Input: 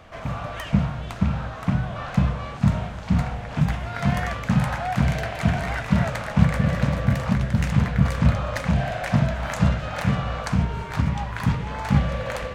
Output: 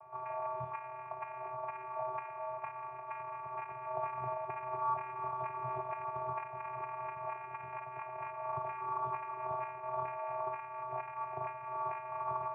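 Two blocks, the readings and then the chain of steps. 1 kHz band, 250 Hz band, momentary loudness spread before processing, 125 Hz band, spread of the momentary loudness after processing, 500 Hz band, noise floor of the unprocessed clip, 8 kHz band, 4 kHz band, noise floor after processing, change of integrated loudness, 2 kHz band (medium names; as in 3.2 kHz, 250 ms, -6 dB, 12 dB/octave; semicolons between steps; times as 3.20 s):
-5.0 dB, under -35 dB, 6 LU, -32.5 dB, 6 LU, -10.0 dB, -35 dBFS, under -40 dB, under -35 dB, -46 dBFS, -16.0 dB, -19.0 dB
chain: every band turned upside down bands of 2 kHz; compression 4:1, threshold -25 dBFS, peak gain reduction 13.5 dB; vocoder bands 8, square 127 Hz; cascade formant filter a; trim +8.5 dB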